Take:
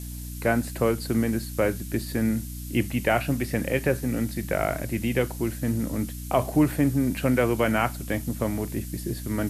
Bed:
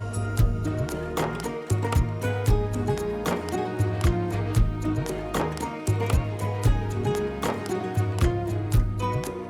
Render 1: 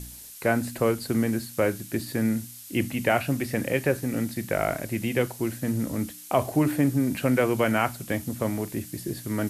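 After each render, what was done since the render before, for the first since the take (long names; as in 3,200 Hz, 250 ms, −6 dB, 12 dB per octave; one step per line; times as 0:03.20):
hum removal 60 Hz, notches 5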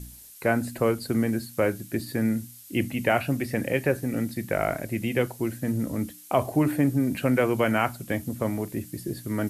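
broadband denoise 6 dB, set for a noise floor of −44 dBFS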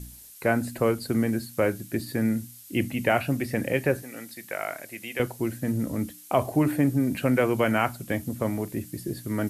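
0:04.02–0:05.20: high-pass filter 1,300 Hz 6 dB per octave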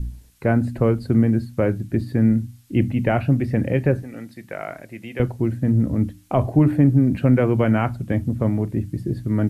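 RIAA equalisation playback
mains-hum notches 50/100 Hz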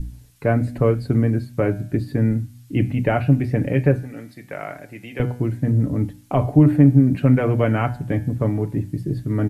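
comb filter 6.9 ms, depth 43%
hum removal 122.1 Hz, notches 33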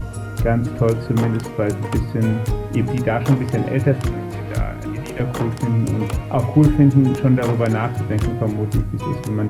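mix in bed −0.5 dB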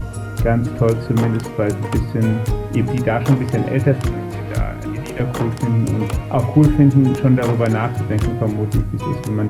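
level +1.5 dB
brickwall limiter −2 dBFS, peak gain reduction 1.5 dB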